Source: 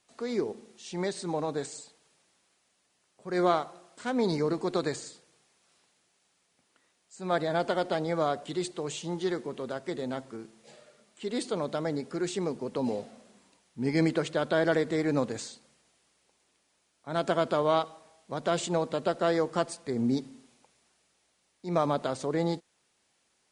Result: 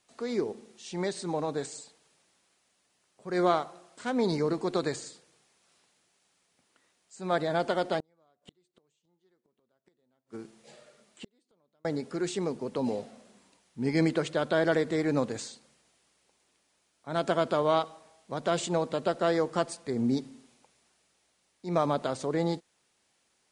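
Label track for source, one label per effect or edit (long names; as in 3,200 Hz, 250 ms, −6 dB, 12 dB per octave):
8.000000	11.850000	gate with flip shuts at −30 dBFS, range −40 dB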